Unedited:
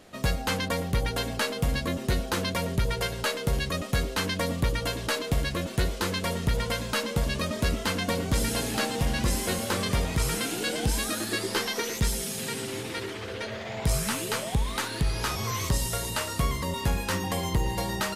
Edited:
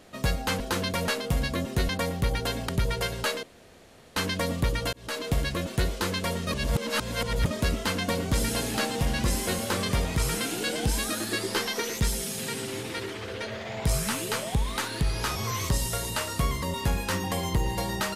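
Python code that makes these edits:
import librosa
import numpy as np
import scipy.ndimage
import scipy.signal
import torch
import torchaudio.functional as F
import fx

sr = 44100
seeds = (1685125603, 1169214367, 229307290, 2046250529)

y = fx.edit(x, sr, fx.swap(start_s=0.6, length_s=0.8, other_s=2.21, other_length_s=0.48),
    fx.room_tone_fill(start_s=3.43, length_s=0.73),
    fx.fade_in_span(start_s=4.93, length_s=0.34),
    fx.reverse_span(start_s=6.47, length_s=0.99), tone=tone)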